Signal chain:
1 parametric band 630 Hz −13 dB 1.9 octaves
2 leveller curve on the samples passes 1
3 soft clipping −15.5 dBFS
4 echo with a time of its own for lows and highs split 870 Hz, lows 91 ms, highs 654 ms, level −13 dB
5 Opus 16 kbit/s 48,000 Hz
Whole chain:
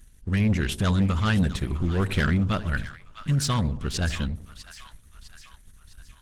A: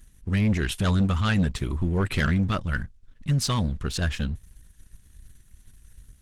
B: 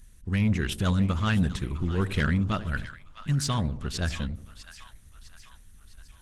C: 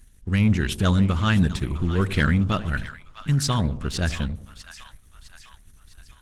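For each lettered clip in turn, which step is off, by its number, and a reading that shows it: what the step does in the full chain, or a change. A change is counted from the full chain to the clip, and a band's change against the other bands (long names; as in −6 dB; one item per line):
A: 4, change in momentary loudness spread −5 LU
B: 2, change in integrated loudness −2.5 LU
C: 3, change in crest factor +2.0 dB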